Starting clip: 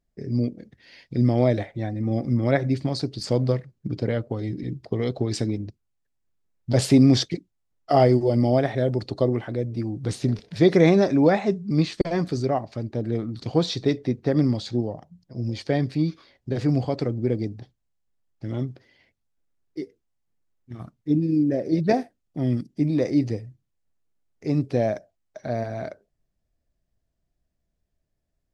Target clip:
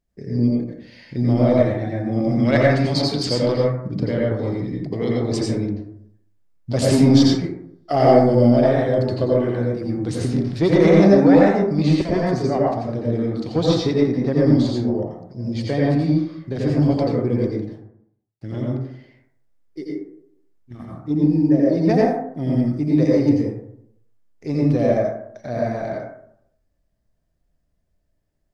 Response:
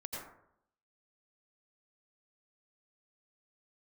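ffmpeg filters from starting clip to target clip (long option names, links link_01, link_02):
-filter_complex "[0:a]asettb=1/sr,asplit=3[link_01][link_02][link_03];[link_01]atrim=end=2.204[link_04];[link_02]atrim=start=2.2:end=3.56,asetpts=PTS-STARTPTS,afade=type=in:duration=0.004:curve=qsin,afade=type=out:start_time=1.356:duration=0.004:curve=qsin,equalizer=frequency=3100:width_type=o:width=2.5:gain=9[link_05];[link_03]atrim=start=3.556[link_06];[link_04][link_05]acrossfade=duration=0.004:curve1=hsin:curve2=qsin[link_07];[link_07][link_06]acrossfade=duration=0.004:curve1=qsin:curve2=hsin,acontrast=66,asettb=1/sr,asplit=3[link_08][link_09][link_10];[link_08]atrim=end=17.514[link_11];[link_09]atrim=start=17.51:end=18.46,asetpts=PTS-STARTPTS,afade=type=in:duration=0.004:curve=qsin,afade=type=out:start_time=0.946:duration=0.004:curve=qsin,aeval=exprs='sgn(val(0))*max(abs(val(0))-0.00211,0)':channel_layout=same[link_12];[link_10]atrim=start=18.456[link_13];[link_11][link_12]acrossfade=duration=0.004:curve1=hsin:curve2=qsin[link_14];[link_14][link_13]acrossfade=duration=0.004:curve1=qsin:curve2=hsin[link_15];[1:a]atrim=start_sample=2205[link_16];[link_15][link_16]afir=irnorm=-1:irlink=0,volume=-1.5dB"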